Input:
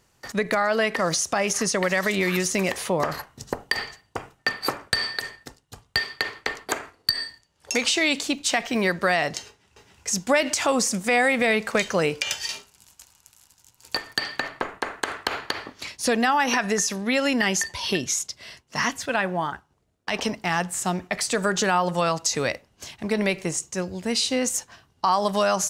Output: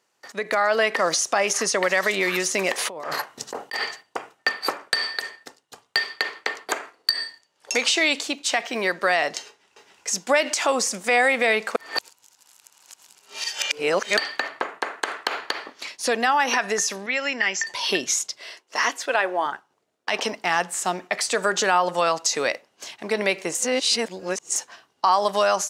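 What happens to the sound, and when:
2.78–4.03 s: compressor with a negative ratio -32 dBFS
11.76–14.17 s: reverse
17.06–17.67 s: rippled Chebyshev low-pass 7.6 kHz, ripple 9 dB
18.39–19.46 s: resonant low shelf 250 Hz -9.5 dB, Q 1.5
23.55–24.56 s: reverse
whole clip: high-pass 370 Hz 12 dB/octave; treble shelf 11 kHz -7.5 dB; level rider gain up to 9.5 dB; trim -5 dB

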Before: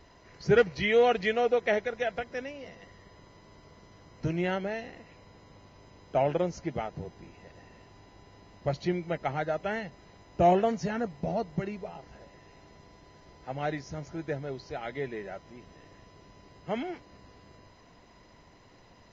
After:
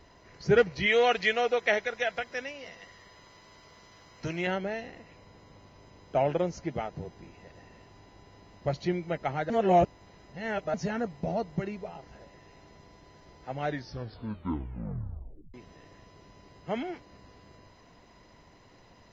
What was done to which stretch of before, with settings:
0.86–4.47 s: tilt shelf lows -6 dB, about 690 Hz
9.50–10.74 s: reverse
13.65 s: tape stop 1.89 s

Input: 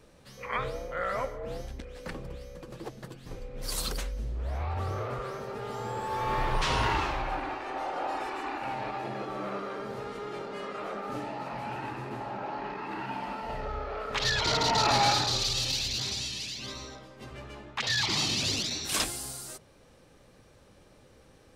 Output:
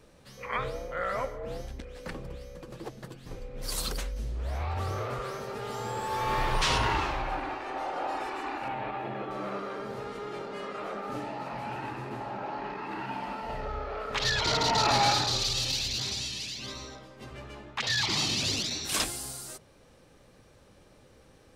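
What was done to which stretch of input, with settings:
4.16–6.78 s: treble shelf 2.6 kHz +6.5 dB
8.68–9.31 s: high-order bell 7.2 kHz -12.5 dB

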